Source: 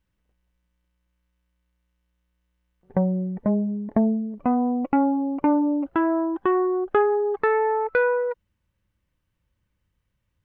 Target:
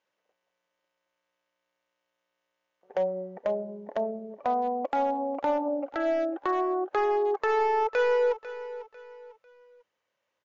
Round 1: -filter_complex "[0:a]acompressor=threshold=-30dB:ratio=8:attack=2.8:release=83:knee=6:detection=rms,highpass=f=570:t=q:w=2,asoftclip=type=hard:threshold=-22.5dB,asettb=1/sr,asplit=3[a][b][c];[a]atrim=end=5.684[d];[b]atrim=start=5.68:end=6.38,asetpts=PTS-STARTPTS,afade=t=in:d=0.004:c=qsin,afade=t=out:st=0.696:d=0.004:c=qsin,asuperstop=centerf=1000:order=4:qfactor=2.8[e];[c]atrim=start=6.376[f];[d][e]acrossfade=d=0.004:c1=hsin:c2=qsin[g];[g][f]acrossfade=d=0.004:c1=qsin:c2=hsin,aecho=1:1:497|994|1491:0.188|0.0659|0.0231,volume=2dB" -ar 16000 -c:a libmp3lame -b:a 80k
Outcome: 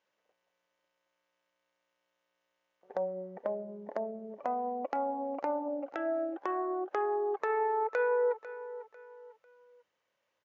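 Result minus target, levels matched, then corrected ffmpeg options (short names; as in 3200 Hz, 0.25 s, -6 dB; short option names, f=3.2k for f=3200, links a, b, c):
compressor: peak gain reduction +7 dB
-filter_complex "[0:a]acompressor=threshold=-22dB:ratio=8:attack=2.8:release=83:knee=6:detection=rms,highpass=f=570:t=q:w=2,asoftclip=type=hard:threshold=-22.5dB,asettb=1/sr,asplit=3[a][b][c];[a]atrim=end=5.684[d];[b]atrim=start=5.68:end=6.38,asetpts=PTS-STARTPTS,afade=t=in:d=0.004:c=qsin,afade=t=out:st=0.696:d=0.004:c=qsin,asuperstop=centerf=1000:order=4:qfactor=2.8[e];[c]atrim=start=6.376[f];[d][e]acrossfade=d=0.004:c1=hsin:c2=qsin[g];[g][f]acrossfade=d=0.004:c1=qsin:c2=hsin,aecho=1:1:497|994|1491:0.188|0.0659|0.0231,volume=2dB" -ar 16000 -c:a libmp3lame -b:a 80k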